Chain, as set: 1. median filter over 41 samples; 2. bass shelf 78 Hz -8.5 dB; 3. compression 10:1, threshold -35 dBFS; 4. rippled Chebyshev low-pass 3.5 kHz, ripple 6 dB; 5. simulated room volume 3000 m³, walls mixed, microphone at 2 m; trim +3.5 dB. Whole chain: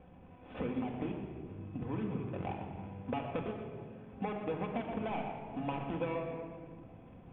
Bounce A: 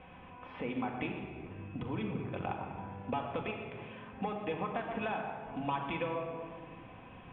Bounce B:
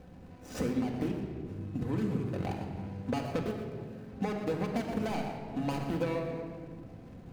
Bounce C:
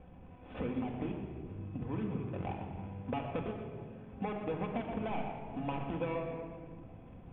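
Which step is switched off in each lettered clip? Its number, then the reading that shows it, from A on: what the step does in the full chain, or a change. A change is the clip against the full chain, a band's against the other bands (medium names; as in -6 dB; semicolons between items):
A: 1, 2 kHz band +6.5 dB; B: 4, 1 kHz band -3.5 dB; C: 2, 125 Hz band +1.5 dB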